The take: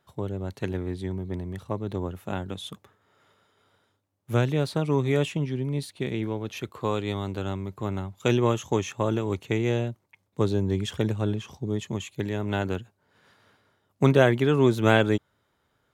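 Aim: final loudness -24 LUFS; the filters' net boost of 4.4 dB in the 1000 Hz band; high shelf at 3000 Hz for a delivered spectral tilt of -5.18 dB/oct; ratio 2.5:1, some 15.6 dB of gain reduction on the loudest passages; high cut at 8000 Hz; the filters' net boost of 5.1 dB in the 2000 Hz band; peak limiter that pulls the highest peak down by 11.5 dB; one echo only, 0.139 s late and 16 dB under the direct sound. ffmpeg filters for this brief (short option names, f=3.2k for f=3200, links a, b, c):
-af "lowpass=8k,equalizer=f=1k:t=o:g=4,equalizer=f=2k:t=o:g=3.5,highshelf=f=3k:g=5.5,acompressor=threshold=-35dB:ratio=2.5,alimiter=level_in=2dB:limit=-24dB:level=0:latency=1,volume=-2dB,aecho=1:1:139:0.158,volume=14dB"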